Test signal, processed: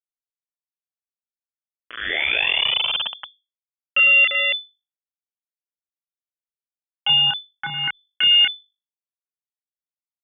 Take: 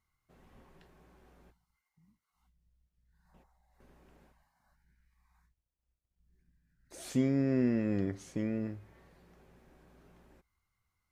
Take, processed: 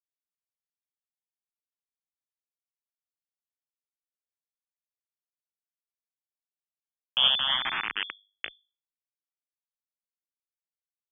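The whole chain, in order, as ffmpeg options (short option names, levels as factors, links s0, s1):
-filter_complex "[0:a]acrossover=split=230 2300:gain=0.224 1 0.0891[s0][s1][s2];[s0][s1][s2]amix=inputs=3:normalize=0,aecho=1:1:30|64.5|104.2|149.8|202.3:0.631|0.398|0.251|0.158|0.1,aeval=exprs='0.15*(cos(1*acos(clip(val(0)/0.15,-1,1)))-cos(1*PI/2))+0.0119*(cos(4*acos(clip(val(0)/0.15,-1,1)))-cos(4*PI/2))':c=same,asplit=2[s3][s4];[s4]asoftclip=type=hard:threshold=0.0447,volume=0.282[s5];[s3][s5]amix=inputs=2:normalize=0,acrusher=bits=3:mix=0:aa=0.000001,bandreject=f=50:t=h:w=6,bandreject=f=100:t=h:w=6,bandreject=f=150:t=h:w=6,bandreject=f=200:t=h:w=6,bandreject=f=250:t=h:w=6,lowpass=f=3000:t=q:w=0.5098,lowpass=f=3000:t=q:w=0.6013,lowpass=f=3000:t=q:w=0.9,lowpass=f=3000:t=q:w=2.563,afreqshift=-3500,asplit=2[s6][s7];[s7]afreqshift=0.47[s8];[s6][s8]amix=inputs=2:normalize=1,volume=2.24"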